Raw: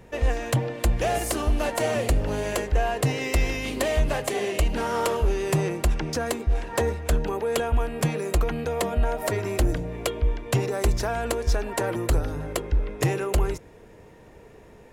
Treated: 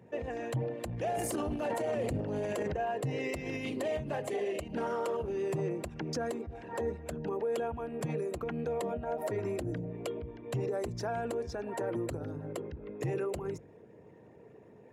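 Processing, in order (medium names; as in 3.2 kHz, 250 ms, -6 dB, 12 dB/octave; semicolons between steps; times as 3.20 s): resonances exaggerated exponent 1.5; high-pass 100 Hz 24 dB/octave; hum notches 50/100/150 Hz; 0.86–2.75 s: transient shaper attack -5 dB, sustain +11 dB; peak limiter -20.5 dBFS, peak gain reduction 8.5 dB; trim -5 dB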